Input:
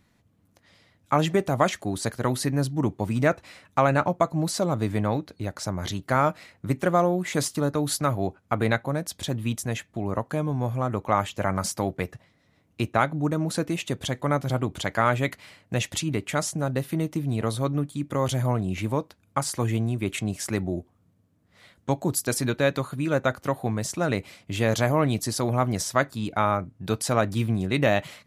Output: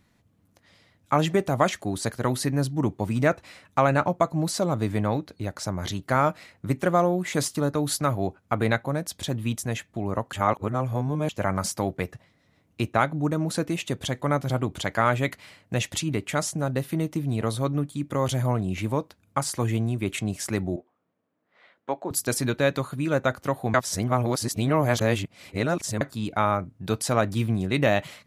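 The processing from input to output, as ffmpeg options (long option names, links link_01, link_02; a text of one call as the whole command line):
ffmpeg -i in.wav -filter_complex "[0:a]asettb=1/sr,asplit=3[link_01][link_02][link_03];[link_01]atrim=end=20.764[link_04];[link_02]atrim=start=20.76:end=22.11,asetpts=PTS-STARTPTS,afade=type=in:duration=0.004:curve=qsin,afade=type=out:start_time=1.346:duration=0.004:curve=qsin,highpass=420,lowpass=2400[link_05];[link_03]atrim=start=22.106[link_06];[link_04][link_05]acrossfade=duration=0.004:curve1=hsin:curve2=qsin[link_07];[link_07][link_06]acrossfade=duration=0.004:curve1=qsin:curve2=hsin,asplit=5[link_08][link_09][link_10][link_11][link_12];[link_08]atrim=end=10.332[link_13];[link_09]atrim=start=10.328:end=11.292,asetpts=PTS-STARTPTS,areverse[link_14];[link_10]atrim=start=11.288:end=23.742[link_15];[link_11]atrim=start=23.738:end=26.012,asetpts=PTS-STARTPTS,areverse[link_16];[link_12]atrim=start=26.008[link_17];[link_13][link_14]acrossfade=duration=0.004:curve1=hsin:curve2=hsin[link_18];[link_18][link_15]acrossfade=duration=0.004:curve1=hsin:curve2=hsin[link_19];[link_19][link_16]acrossfade=duration=0.004:curve1=hsin:curve2=hsin[link_20];[link_20][link_17]acrossfade=duration=0.004:curve1=hsin:curve2=hsin" out.wav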